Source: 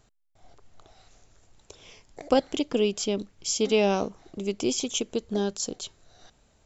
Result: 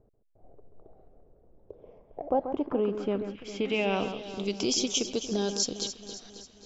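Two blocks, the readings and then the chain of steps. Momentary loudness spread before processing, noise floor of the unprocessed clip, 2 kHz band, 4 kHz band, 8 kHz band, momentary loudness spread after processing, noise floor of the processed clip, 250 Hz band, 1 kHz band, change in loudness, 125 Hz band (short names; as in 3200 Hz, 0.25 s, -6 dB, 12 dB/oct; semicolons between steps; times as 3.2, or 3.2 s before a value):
12 LU, -64 dBFS, -0.5 dB, 0.0 dB, n/a, 15 LU, -63 dBFS, -2.5 dB, -2.0 dB, -2.5 dB, -2.5 dB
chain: limiter -18.5 dBFS, peak gain reduction 10 dB; echo with dull and thin repeats by turns 0.135 s, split 2200 Hz, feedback 74%, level -8.5 dB; low-pass sweep 490 Hz -> 5400 Hz, 1.71–4.78; gain -1 dB; AAC 96 kbps 22050 Hz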